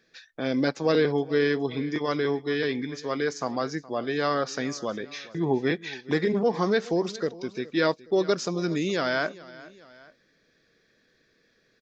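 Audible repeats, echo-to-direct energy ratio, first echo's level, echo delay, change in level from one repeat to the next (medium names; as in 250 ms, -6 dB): 2, -18.5 dB, -19.5 dB, 418 ms, -5.5 dB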